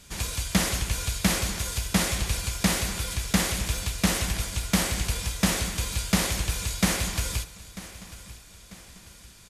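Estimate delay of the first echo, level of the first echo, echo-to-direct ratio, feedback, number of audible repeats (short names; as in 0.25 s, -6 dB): 0.943 s, -17.0 dB, -16.0 dB, 44%, 3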